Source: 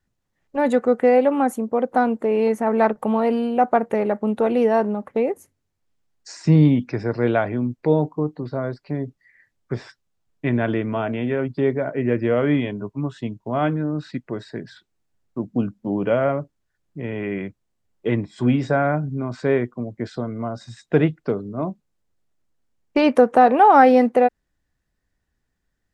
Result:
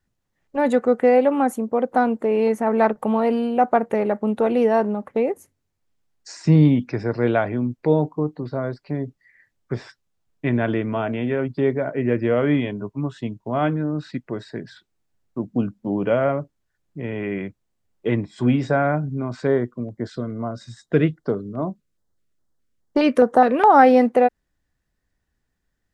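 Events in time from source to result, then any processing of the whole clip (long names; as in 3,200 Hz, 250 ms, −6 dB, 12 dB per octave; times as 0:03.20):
0:19.47–0:23.79: auto-filter notch square 2.4 Hz 820–2,500 Hz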